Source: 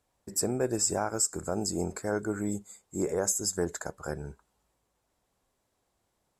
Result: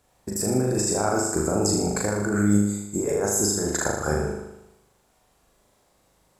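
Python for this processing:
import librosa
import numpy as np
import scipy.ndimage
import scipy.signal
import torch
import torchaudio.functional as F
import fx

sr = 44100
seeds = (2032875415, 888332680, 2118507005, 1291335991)

y = fx.over_compress(x, sr, threshold_db=-33.0, ratio=-1.0)
y = fx.room_flutter(y, sr, wall_m=6.7, rt60_s=0.86)
y = y * 10.0 ** (7.0 / 20.0)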